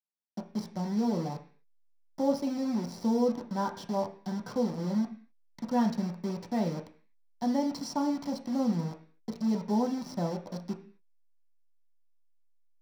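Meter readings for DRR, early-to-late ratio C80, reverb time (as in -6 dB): 1.5 dB, 15.5 dB, 0.45 s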